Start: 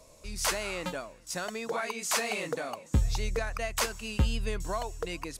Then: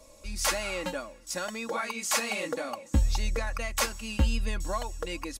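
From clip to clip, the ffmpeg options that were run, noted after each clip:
ffmpeg -i in.wav -af "aecho=1:1:3.6:0.64" out.wav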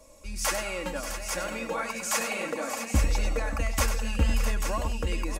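ffmpeg -i in.wav -filter_complex "[0:a]equalizer=frequency=4000:width_type=o:width=0.61:gain=-5.5,asplit=2[link_01][link_02];[link_02]aecho=0:1:98|583|587|657|840:0.355|0.224|0.126|0.316|0.422[link_03];[link_01][link_03]amix=inputs=2:normalize=0" out.wav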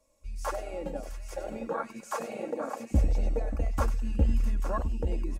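ffmpeg -i in.wav -af "afwtdn=0.0447" out.wav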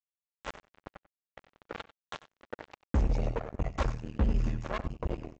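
ffmpeg -i in.wav -filter_complex "[0:a]highshelf=frequency=5500:gain=-7.5,aresample=16000,acrusher=bits=3:mix=0:aa=0.5,aresample=44100,asplit=2[link_01][link_02];[link_02]adelay=93.29,volume=-17dB,highshelf=frequency=4000:gain=-2.1[link_03];[link_01][link_03]amix=inputs=2:normalize=0,volume=-3.5dB" out.wav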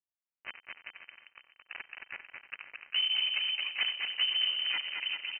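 ffmpeg -i in.wav -af "aecho=1:1:220|396|536.8|649.4|739.6:0.631|0.398|0.251|0.158|0.1,adynamicequalizer=threshold=0.00355:dfrequency=810:dqfactor=0.8:tfrequency=810:tqfactor=0.8:attack=5:release=100:ratio=0.375:range=3:mode=boostabove:tftype=bell,lowpass=frequency=2600:width_type=q:width=0.5098,lowpass=frequency=2600:width_type=q:width=0.6013,lowpass=frequency=2600:width_type=q:width=0.9,lowpass=frequency=2600:width_type=q:width=2.563,afreqshift=-3100,volume=-5dB" out.wav

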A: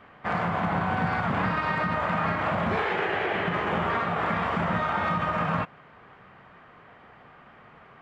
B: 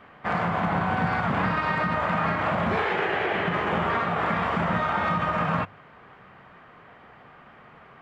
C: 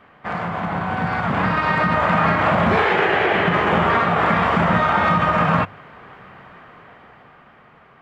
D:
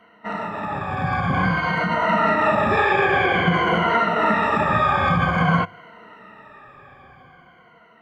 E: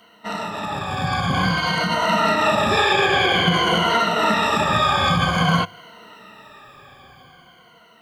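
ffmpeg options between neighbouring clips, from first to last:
ffmpeg -i in.wav -af "bandreject=frequency=50:width_type=h:width=6,bandreject=frequency=100:width_type=h:width=6,volume=1.5dB" out.wav
ffmpeg -i in.wav -af "dynaudnorm=framelen=220:gausssize=13:maxgain=8.5dB" out.wav
ffmpeg -i in.wav -af "afftfilt=real='re*pow(10,20/40*sin(2*PI*(1.9*log(max(b,1)*sr/1024/100)/log(2)-(-0.51)*(pts-256)/sr)))':imag='im*pow(10,20/40*sin(2*PI*(1.9*log(max(b,1)*sr/1024/100)/log(2)-(-0.51)*(pts-256)/sr)))':win_size=1024:overlap=0.75,volume=-5.5dB" out.wav
ffmpeg -i in.wav -af "aexciter=amount=5.8:drive=4.8:freq=3000" out.wav

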